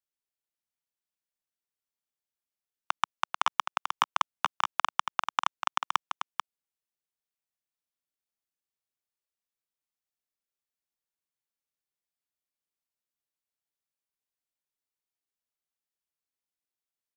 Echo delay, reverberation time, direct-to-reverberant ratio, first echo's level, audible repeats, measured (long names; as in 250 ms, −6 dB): 440 ms, no reverb audible, no reverb audible, −7.0 dB, 1